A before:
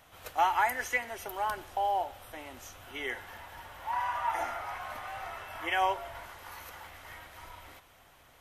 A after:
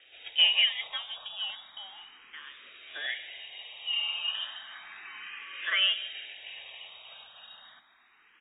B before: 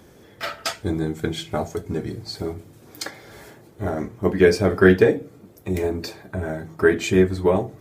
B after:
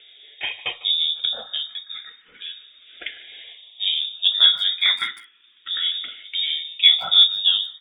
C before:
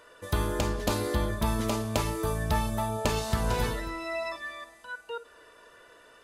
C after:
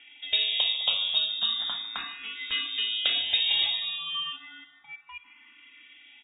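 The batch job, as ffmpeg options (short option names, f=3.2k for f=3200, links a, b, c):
-filter_complex "[0:a]bandreject=f=50:t=h:w=6,bandreject=f=100:t=h:w=6,bandreject=f=150:t=h:w=6,bandreject=f=200:t=h:w=6,bandreject=f=250:t=h:w=6,bandreject=f=300:t=h:w=6,bandreject=f=350:t=h:w=6,bandreject=f=400:t=h:w=6,acrossover=split=2200[a][b];[a]volume=5.5dB,asoftclip=hard,volume=-5.5dB[c];[c][b]amix=inputs=2:normalize=0,lowpass=f=3.2k:t=q:w=0.5098,lowpass=f=3.2k:t=q:w=0.6013,lowpass=f=3.2k:t=q:w=0.9,lowpass=f=3.2k:t=q:w=2.563,afreqshift=-3800,asplit=2[d][e];[e]adelay=150,highpass=300,lowpass=3.4k,asoftclip=type=hard:threshold=-12dB,volume=-17dB[f];[d][f]amix=inputs=2:normalize=0,asplit=2[g][h];[h]afreqshift=0.33[i];[g][i]amix=inputs=2:normalize=1,volume=3.5dB"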